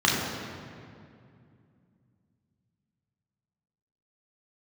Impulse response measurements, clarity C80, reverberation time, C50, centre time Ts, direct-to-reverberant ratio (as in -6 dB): 2.0 dB, 2.4 s, 0.5 dB, 102 ms, -4.5 dB